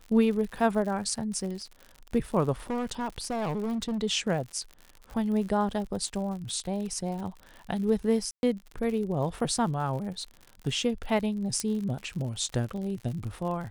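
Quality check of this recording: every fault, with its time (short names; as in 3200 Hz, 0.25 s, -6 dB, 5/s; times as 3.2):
crackle 74/s -36 dBFS
2.7–3.98 clipped -27 dBFS
8.31–8.43 gap 0.121 s
11.6 pop -15 dBFS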